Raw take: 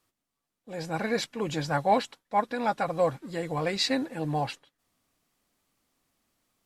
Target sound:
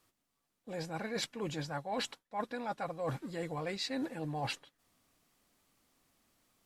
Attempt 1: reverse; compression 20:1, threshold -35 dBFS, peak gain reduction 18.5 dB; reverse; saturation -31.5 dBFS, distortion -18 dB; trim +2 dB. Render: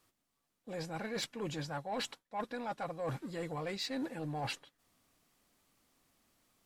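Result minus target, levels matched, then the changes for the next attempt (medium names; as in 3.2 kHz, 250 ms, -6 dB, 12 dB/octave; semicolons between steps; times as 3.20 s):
saturation: distortion +14 dB
change: saturation -23 dBFS, distortion -32 dB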